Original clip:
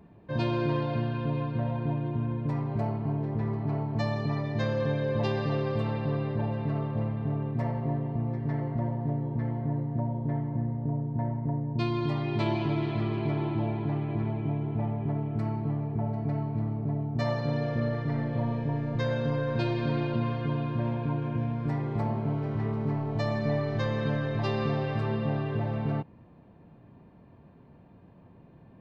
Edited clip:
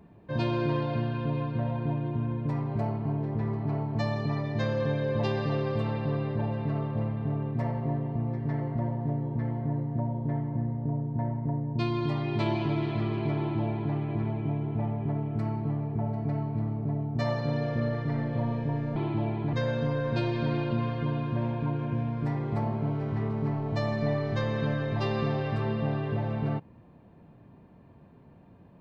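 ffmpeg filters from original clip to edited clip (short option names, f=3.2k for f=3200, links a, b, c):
-filter_complex "[0:a]asplit=3[a][b][c];[a]atrim=end=18.962[d];[b]atrim=start=13.368:end=13.942[e];[c]atrim=start=18.958[f];[d][e]acrossfade=d=0.004:c1=hsin:c2=hsin[g];[g][f]acrossfade=d=0.004:c1=hsin:c2=hsin"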